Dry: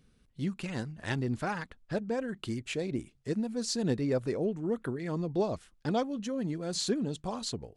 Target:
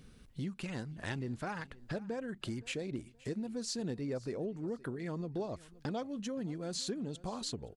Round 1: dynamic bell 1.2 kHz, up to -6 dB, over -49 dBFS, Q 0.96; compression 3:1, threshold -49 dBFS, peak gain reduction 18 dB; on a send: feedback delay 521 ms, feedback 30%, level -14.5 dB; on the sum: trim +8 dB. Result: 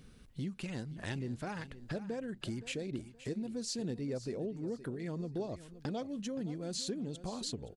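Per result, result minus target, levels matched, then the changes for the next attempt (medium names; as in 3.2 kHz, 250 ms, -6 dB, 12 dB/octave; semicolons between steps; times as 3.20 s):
echo-to-direct +6.5 dB; 1 kHz band -2.5 dB
change: feedback delay 521 ms, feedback 30%, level -21 dB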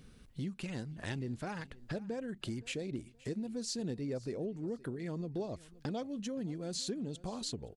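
1 kHz band -2.5 dB
remove: dynamic bell 1.2 kHz, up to -6 dB, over -49 dBFS, Q 0.96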